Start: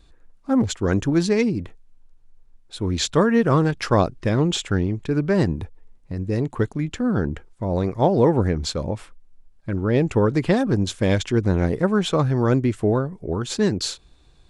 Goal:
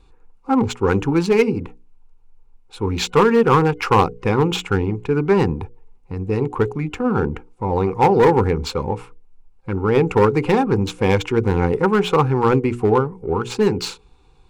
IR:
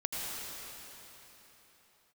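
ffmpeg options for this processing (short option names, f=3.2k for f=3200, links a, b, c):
-filter_complex "[0:a]asplit=2[a][b];[b]adynamicsmooth=sensitivity=5:basefreq=1.1k,volume=-2dB[c];[a][c]amix=inputs=2:normalize=0,superequalizer=7b=2:8b=0.398:9b=3.16:10b=2.24:12b=2.24,asoftclip=type=hard:threshold=-4dB,bandreject=f=60:t=h:w=6,bandreject=f=120:t=h:w=6,bandreject=f=180:t=h:w=6,bandreject=f=240:t=h:w=6,bandreject=f=300:t=h:w=6,bandreject=f=360:t=h:w=6,bandreject=f=420:t=h:w=6,bandreject=f=480:t=h:w=6,volume=-3.5dB"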